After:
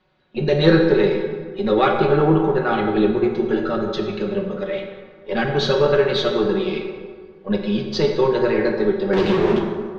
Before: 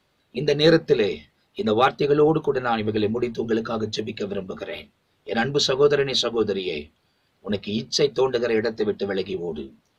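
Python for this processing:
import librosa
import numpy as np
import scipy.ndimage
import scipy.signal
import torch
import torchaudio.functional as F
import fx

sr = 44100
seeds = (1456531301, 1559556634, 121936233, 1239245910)

y = np.where(x < 0.0, 10.0 ** (-3.0 / 20.0) * x, x)
y = y + 0.58 * np.pad(y, (int(5.4 * sr / 1000.0), 0))[:len(y)]
y = fx.power_curve(y, sr, exponent=0.35, at=(9.13, 9.59))
y = fx.air_absorb(y, sr, metres=220.0)
y = fx.rev_plate(y, sr, seeds[0], rt60_s=1.7, hf_ratio=0.55, predelay_ms=0, drr_db=1.5)
y = F.gain(torch.from_numpy(y), 3.0).numpy()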